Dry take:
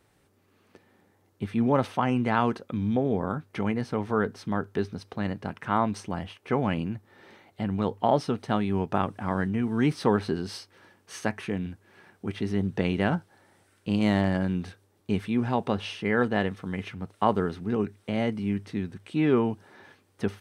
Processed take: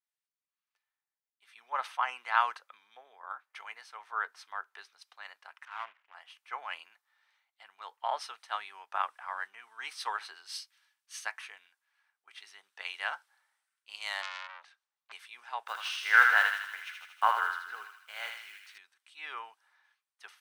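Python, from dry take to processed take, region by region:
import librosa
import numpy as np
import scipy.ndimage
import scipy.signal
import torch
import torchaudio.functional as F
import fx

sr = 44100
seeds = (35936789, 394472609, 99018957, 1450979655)

y = fx.chain(x, sr, fx.cvsd(bps=16000),
    fx.power_curve(exponent=1.4), at=(5.65, 6.15))
y = fx.chain(y, sr, fx.highpass(hz=140.0, slope=24),
    fx.air_absorb(metres=65.0),
    fx.transformer_sat(knee_hz=2700.0), at=(14.22, 15.12))
y = fx.chain(y, sr, fx.block_float(bits=7),
    fx.peak_eq(hz=1500.0, db=11.5, octaves=0.24),
    fx.echo_thinned(ms=79, feedback_pct=79, hz=1100.0, wet_db=-3), at=(15.66, 18.78))
y = scipy.signal.sosfilt(scipy.signal.butter(4, 990.0, 'highpass', fs=sr, output='sos'), y)
y = fx.band_widen(y, sr, depth_pct=70)
y = y * 10.0 ** (-3.0 / 20.0)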